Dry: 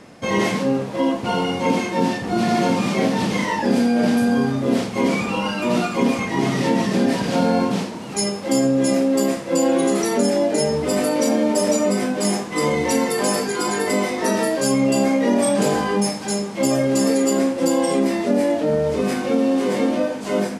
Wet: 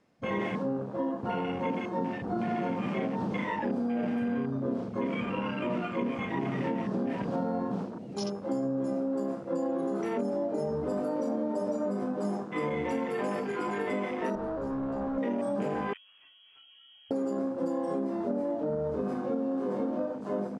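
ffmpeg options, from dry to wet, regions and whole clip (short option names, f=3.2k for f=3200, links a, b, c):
-filter_complex "[0:a]asettb=1/sr,asplit=3[a][b][c];[a]atrim=end=4.194[d];[b]atrim=start=4.19:end=6.15,asetpts=PTS-STARTPTS,afade=t=in:d=0.004:c=qsin,afade=t=out:st=1.956:d=0.004:c=qsin,highshelf=f=9.7k:g=-5.5,bandreject=f=780:w=6.9,aecho=1:1:967:0.282,atrim=end_sample=86436[e];[c]atrim=start=6.146[f];[d][e]acrossfade=d=0.004:c1=hsin:c2=qsin[g];[g][f]acrossfade=d=0.004:c1=qsin:c2=hsin,asettb=1/sr,asplit=3[h][i][j];[h]atrim=end=14.354[k];[i]atrim=start=14.35:end=15.18,asetpts=PTS-STARTPTS,afade=t=in:d=0.004:c=qsin,afade=t=out:st=0.826:d=0.004:c=qsin,lowpass=f=1.3k:p=1,aeval=exprs='val(0)+0.0158*(sin(2*PI*50*n/s)+sin(2*PI*2*50*n/s)/2+sin(2*PI*3*50*n/s)/3+sin(2*PI*4*50*n/s)/4+sin(2*PI*5*50*n/s)/5)':c=same,asoftclip=type=hard:threshold=-22.5dB[l];[j]atrim=start=15.176[m];[k][l]acrossfade=d=0.004:c1=hsin:c2=qsin[n];[n][m]acrossfade=d=0.004:c1=qsin:c2=hsin,asettb=1/sr,asplit=3[o][p][q];[o]atrim=end=15.934[r];[p]atrim=start=15.93:end=17.11,asetpts=PTS-STARTPTS,afade=t=in:d=0.004:c=qsin,afade=t=out:st=1.176:d=0.004:c=qsin,highpass=f=150:p=1,acompressor=threshold=-28dB:ratio=12:attack=3.2:release=140:knee=1:detection=peak,lowpass=f=3k:t=q:w=0.5098,lowpass=f=3k:t=q:w=0.6013,lowpass=f=3k:t=q:w=0.9,lowpass=f=3k:t=q:w=2.563,afreqshift=-3500[s];[q]atrim=start=17.106[t];[r][s]acrossfade=d=0.004:c1=hsin:c2=qsin[u];[u][t]acrossfade=d=0.004:c1=qsin:c2=hsin,afwtdn=0.0398,highshelf=f=10k:g=-11,acompressor=threshold=-19dB:ratio=6,volume=-8dB"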